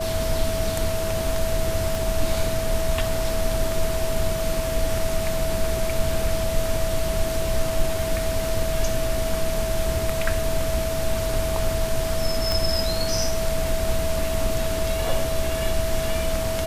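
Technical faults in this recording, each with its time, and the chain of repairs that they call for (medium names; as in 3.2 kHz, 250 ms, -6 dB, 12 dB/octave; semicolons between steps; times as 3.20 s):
whine 650 Hz -26 dBFS
1.95 s: pop
12.52 s: pop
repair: de-click; band-stop 650 Hz, Q 30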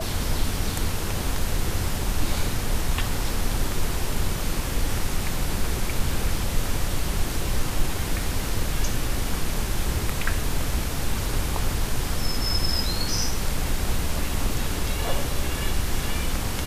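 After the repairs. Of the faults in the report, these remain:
1.95 s: pop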